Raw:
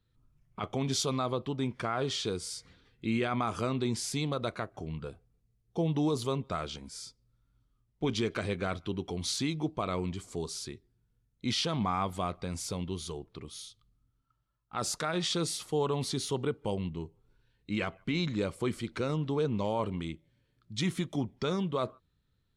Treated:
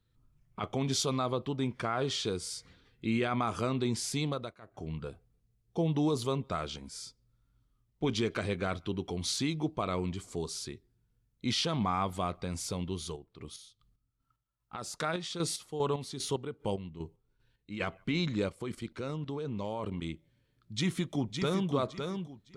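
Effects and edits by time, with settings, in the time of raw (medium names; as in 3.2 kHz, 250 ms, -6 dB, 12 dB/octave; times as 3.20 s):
4.29–4.87 s: dip -19 dB, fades 0.26 s
13.00–17.86 s: square tremolo 2.5 Hz, depth 60%, duty 40%
18.49–20.02 s: level held to a coarse grid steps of 12 dB
20.73–21.70 s: echo throw 560 ms, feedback 25%, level -5.5 dB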